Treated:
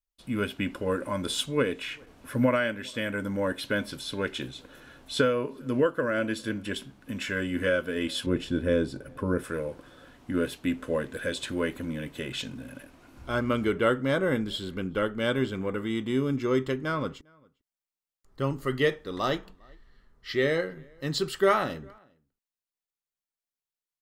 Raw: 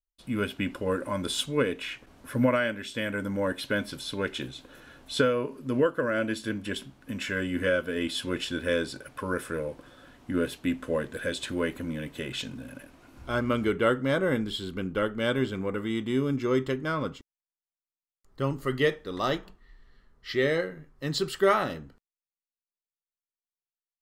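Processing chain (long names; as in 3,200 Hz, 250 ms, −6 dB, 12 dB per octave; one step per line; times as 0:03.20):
0:08.26–0:09.44: tilt shelving filter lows +7.5 dB, about 670 Hz
slap from a distant wall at 69 metres, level −29 dB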